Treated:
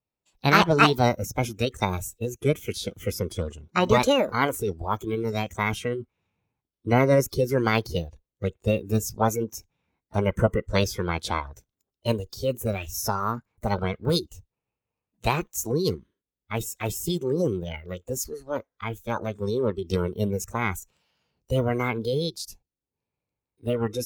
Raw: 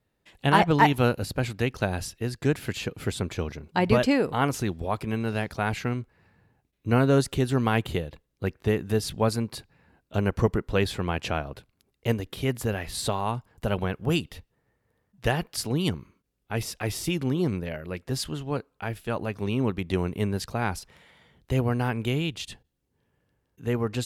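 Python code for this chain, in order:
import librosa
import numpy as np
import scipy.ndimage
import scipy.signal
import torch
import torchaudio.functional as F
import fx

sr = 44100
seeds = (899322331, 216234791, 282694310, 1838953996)

y = fx.noise_reduce_blind(x, sr, reduce_db=17)
y = fx.formant_shift(y, sr, semitones=6)
y = y * 10.0 ** (1.5 / 20.0)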